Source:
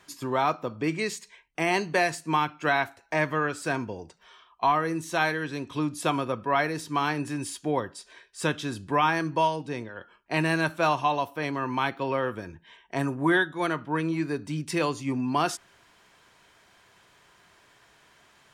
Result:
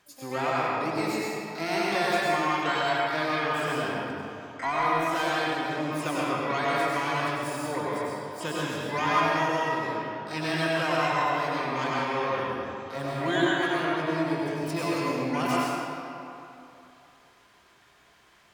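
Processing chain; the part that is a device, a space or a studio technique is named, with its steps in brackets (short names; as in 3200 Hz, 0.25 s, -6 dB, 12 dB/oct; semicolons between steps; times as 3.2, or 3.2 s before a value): shimmer-style reverb (harmoniser +12 st -6 dB; reverb RT60 2.9 s, pre-delay 89 ms, DRR -6.5 dB); gain -8 dB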